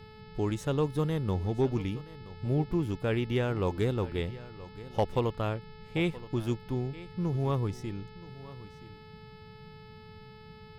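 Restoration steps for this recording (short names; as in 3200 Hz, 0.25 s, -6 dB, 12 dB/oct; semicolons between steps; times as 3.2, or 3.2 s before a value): clip repair -17.5 dBFS; de-hum 432.8 Hz, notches 12; noise print and reduce 27 dB; inverse comb 0.975 s -17.5 dB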